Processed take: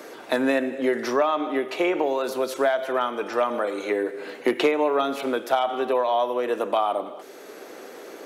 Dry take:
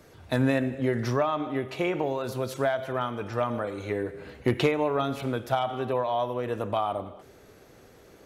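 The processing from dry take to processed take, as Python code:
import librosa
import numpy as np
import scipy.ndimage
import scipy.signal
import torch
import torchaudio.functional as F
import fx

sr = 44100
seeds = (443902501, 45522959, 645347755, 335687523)

y = scipy.signal.sosfilt(scipy.signal.butter(4, 280.0, 'highpass', fs=sr, output='sos'), x)
y = fx.band_squash(y, sr, depth_pct=40)
y = F.gain(torch.from_numpy(y), 5.0).numpy()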